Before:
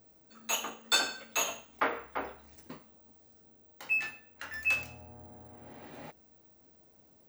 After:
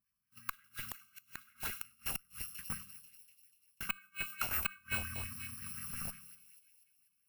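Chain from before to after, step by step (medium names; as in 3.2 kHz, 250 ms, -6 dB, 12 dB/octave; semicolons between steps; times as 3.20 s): bit-reversed sample order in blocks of 128 samples; brick-wall FIR band-stop 250–1000 Hz; small resonant body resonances 250/610/1600 Hz, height 6 dB, ringing for 30 ms; gate -53 dBFS, range -30 dB; on a send: two-band feedback delay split 2.5 kHz, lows 85 ms, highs 244 ms, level -13.5 dB; on the sum: inverted gate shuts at -27 dBFS, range -35 dB; in parallel at -3 dB: Schmitt trigger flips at -37.5 dBFS; on the sum: high-order bell 5.4 kHz -8 dB; sweeping bell 5.6 Hz 690–2000 Hz +12 dB; trim +5.5 dB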